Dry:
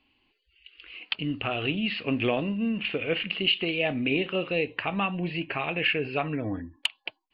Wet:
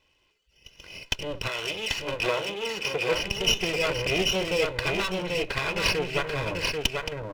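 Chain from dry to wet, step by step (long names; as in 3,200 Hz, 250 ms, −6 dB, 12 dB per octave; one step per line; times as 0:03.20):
lower of the sound and its delayed copy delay 2 ms
0:01.47–0:03.13: high-pass filter 620 Hz → 280 Hz 6 dB per octave
single-tap delay 788 ms −3.5 dB
level +3 dB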